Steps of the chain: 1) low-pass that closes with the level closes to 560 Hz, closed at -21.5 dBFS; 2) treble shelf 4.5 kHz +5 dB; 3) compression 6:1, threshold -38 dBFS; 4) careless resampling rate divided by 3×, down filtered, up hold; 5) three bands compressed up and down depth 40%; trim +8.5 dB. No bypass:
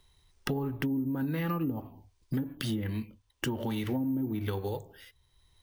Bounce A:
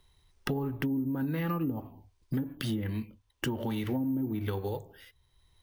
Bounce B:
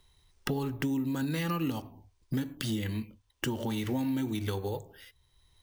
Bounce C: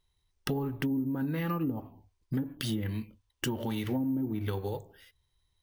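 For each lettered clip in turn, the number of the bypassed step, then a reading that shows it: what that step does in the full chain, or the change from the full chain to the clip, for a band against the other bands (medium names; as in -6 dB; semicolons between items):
2, 8 kHz band -2.0 dB; 1, 8 kHz band +3.5 dB; 5, momentary loudness spread change -1 LU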